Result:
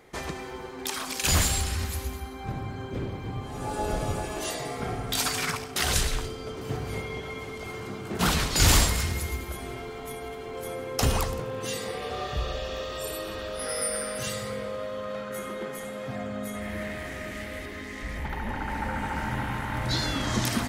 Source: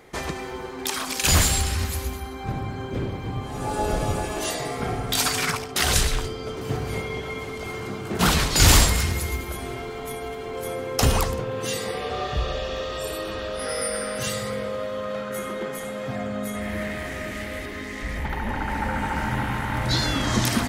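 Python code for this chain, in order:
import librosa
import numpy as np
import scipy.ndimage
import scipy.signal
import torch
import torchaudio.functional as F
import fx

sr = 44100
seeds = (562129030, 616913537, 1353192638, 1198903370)

y = fx.high_shelf(x, sr, hz=10000.0, db=10.5, at=(12.02, 14.21))
y = fx.echo_heads(y, sr, ms=85, heads='first and second', feedback_pct=41, wet_db=-22)
y = y * librosa.db_to_amplitude(-4.5)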